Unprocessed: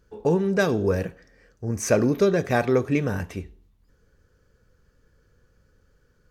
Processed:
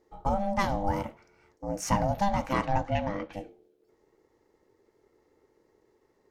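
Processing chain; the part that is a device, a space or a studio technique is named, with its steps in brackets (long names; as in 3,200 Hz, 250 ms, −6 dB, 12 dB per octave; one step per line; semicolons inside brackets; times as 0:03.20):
0:02.53–0:03.32: low-pass filter 9,600 Hz → 3,900 Hz 24 dB per octave
alien voice (ring modulation 400 Hz; flanger 0.68 Hz, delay 2.8 ms, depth 8.8 ms, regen −83%)
level +1.5 dB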